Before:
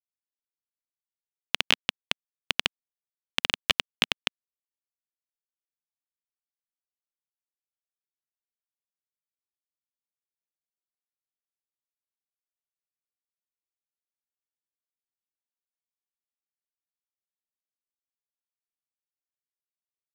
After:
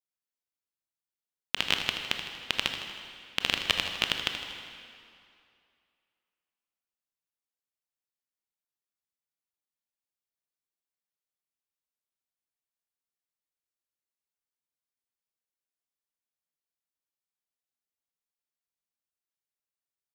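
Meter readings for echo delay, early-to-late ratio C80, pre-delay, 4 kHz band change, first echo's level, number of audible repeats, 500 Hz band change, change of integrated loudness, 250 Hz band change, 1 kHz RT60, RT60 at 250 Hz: 79 ms, 6.5 dB, 20 ms, -1.0 dB, -10.5 dB, 2, -1.0 dB, -1.5 dB, -0.5 dB, 2.5 s, 2.3 s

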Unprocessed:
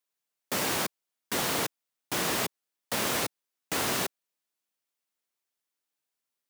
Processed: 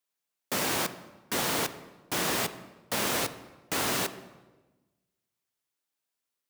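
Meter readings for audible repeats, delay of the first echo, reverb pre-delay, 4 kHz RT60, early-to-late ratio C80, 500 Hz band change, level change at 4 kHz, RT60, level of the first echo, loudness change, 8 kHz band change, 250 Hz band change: no echo, no echo, 19 ms, 0.90 s, 15.0 dB, +0.5 dB, 0.0 dB, 1.2 s, no echo, 0.0 dB, 0.0 dB, +0.5 dB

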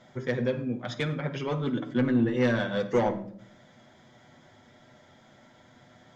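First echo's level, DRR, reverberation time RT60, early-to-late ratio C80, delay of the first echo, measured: no echo, 3.5 dB, 0.65 s, 16.0 dB, no echo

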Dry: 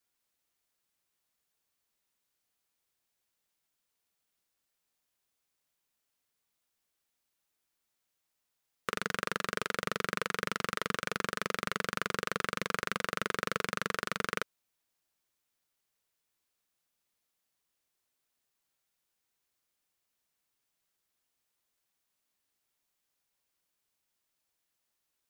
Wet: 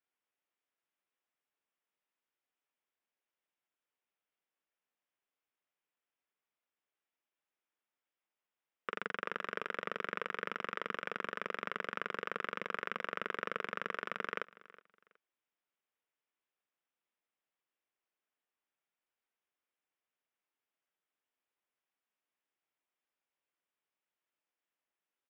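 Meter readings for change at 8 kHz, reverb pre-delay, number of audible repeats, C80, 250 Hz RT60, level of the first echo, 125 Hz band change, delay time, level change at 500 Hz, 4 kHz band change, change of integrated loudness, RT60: under -20 dB, no reverb, 2, no reverb, no reverb, -20.0 dB, -13.0 dB, 369 ms, -5.0 dB, -10.0 dB, -5.5 dB, no reverb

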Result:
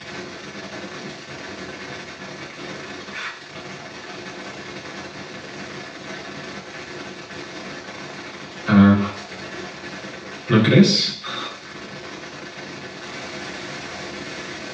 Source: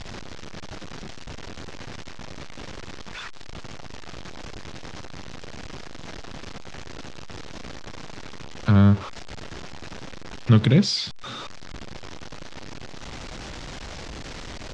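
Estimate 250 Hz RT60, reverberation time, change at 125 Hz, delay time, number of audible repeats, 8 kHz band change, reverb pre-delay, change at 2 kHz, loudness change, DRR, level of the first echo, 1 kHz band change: 0.60 s, 0.60 s, -0.5 dB, no echo, no echo, +5.0 dB, 3 ms, +10.0 dB, -0.5 dB, -6.5 dB, no echo, +7.0 dB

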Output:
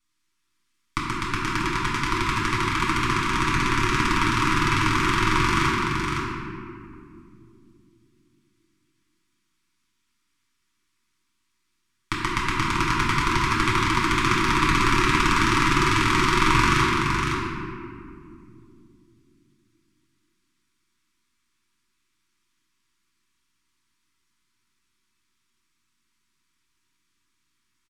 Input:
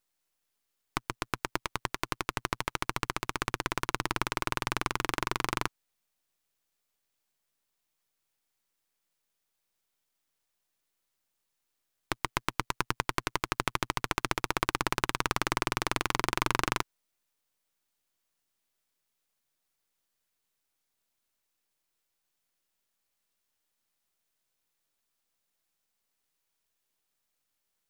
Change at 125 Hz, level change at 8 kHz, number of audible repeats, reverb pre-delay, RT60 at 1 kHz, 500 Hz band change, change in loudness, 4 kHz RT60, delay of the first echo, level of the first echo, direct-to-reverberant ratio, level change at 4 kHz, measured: +14.0 dB, +6.5 dB, 1, 3 ms, 2.2 s, +7.5 dB, +10.5 dB, 1.3 s, 510 ms, -4.5 dB, -8.5 dB, +9.5 dB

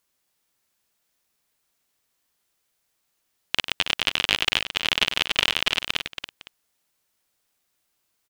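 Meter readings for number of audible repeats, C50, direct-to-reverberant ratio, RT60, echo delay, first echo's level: 3, no reverb, no reverb, no reverb, 97 ms, -10.5 dB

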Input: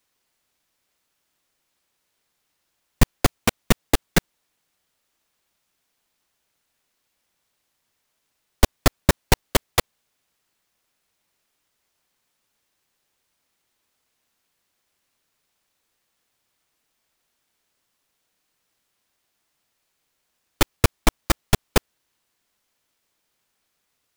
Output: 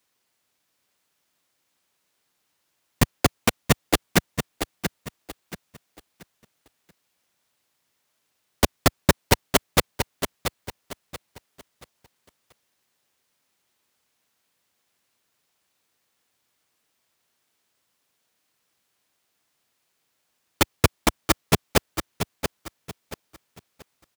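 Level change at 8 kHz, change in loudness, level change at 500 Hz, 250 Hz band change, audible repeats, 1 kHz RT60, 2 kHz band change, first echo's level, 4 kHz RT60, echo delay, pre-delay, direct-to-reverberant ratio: +0.5 dB, -1.5 dB, +1.0 dB, +0.5 dB, 3, no reverb, +0.5 dB, -8.0 dB, no reverb, 681 ms, no reverb, no reverb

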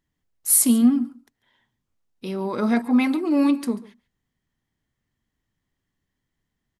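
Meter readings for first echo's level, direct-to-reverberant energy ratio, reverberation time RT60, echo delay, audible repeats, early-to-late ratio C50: -19.5 dB, no reverb, no reverb, 141 ms, 1, no reverb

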